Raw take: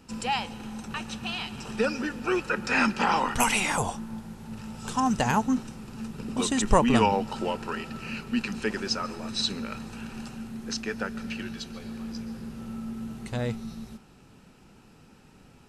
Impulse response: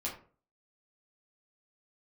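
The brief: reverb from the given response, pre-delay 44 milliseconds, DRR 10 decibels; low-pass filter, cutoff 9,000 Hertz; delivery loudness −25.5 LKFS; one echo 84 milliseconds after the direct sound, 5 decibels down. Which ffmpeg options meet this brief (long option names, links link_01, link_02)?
-filter_complex "[0:a]lowpass=9000,aecho=1:1:84:0.562,asplit=2[link_01][link_02];[1:a]atrim=start_sample=2205,adelay=44[link_03];[link_02][link_03]afir=irnorm=-1:irlink=0,volume=-12dB[link_04];[link_01][link_04]amix=inputs=2:normalize=0,volume=1.5dB"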